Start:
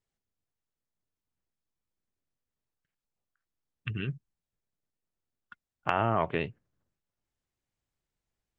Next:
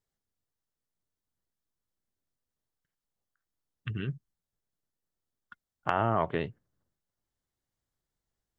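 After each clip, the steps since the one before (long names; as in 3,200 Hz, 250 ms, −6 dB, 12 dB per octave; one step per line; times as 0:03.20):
parametric band 2,500 Hz −8.5 dB 0.35 octaves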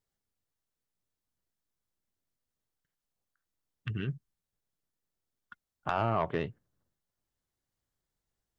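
soft clipping −18 dBFS, distortion −14 dB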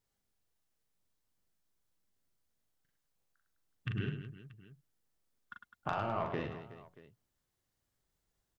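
downward compressor 4 to 1, threshold −35 dBFS, peak gain reduction 9 dB
reverse bouncing-ball delay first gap 40 ms, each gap 1.6×, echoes 5
level +1 dB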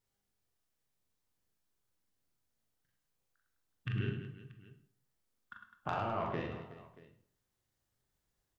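convolution reverb RT60 0.55 s, pre-delay 20 ms, DRR 5.5 dB
level −1.5 dB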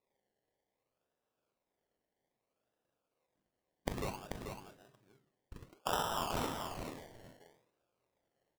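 envelope filter 560–2,300 Hz, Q 2, up, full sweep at −38.5 dBFS
sample-and-hold swept by an LFO 28×, swing 60% 0.62 Hz
single-tap delay 437 ms −6 dB
level +12 dB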